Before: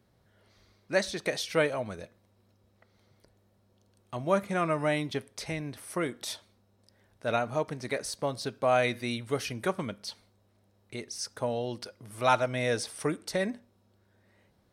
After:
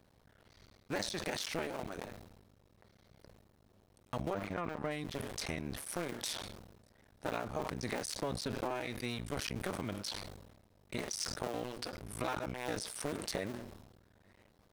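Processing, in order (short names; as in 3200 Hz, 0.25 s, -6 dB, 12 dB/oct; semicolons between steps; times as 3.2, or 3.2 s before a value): cycle switcher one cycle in 2, muted; compressor 10:1, threshold -37 dBFS, peak gain reduction 18.5 dB; 4.33–4.91 bell 12000 Hz -14 dB 1.7 oct; sustainer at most 49 dB/s; gain +2.5 dB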